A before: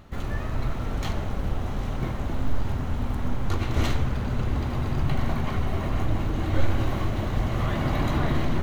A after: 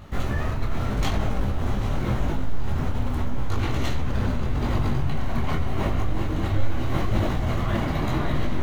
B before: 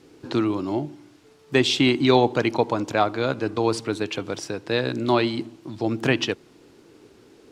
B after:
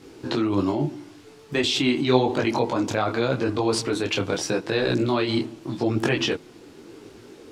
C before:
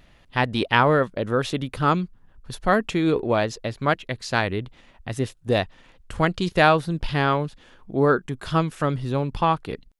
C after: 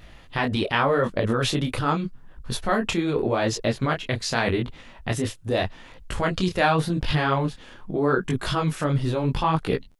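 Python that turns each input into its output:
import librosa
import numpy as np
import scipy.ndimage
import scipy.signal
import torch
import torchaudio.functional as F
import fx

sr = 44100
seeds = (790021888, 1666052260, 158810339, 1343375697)

p1 = fx.over_compress(x, sr, threshold_db=-27.0, ratio=-0.5)
p2 = x + (p1 * librosa.db_to_amplitude(1.0))
y = fx.detune_double(p2, sr, cents=29)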